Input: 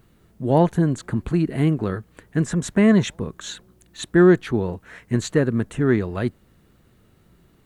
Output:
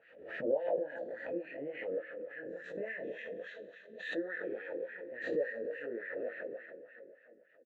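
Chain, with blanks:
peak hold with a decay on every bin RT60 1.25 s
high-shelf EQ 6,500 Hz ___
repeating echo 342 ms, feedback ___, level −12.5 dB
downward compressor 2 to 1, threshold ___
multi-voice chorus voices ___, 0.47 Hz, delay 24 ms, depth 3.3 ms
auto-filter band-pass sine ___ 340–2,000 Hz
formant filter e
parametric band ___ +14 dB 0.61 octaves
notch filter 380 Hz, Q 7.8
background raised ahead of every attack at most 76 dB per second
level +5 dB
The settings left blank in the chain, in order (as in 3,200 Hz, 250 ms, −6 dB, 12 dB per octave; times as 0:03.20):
−4.5 dB, 49%, −19 dBFS, 6, 3.5 Hz, 63 Hz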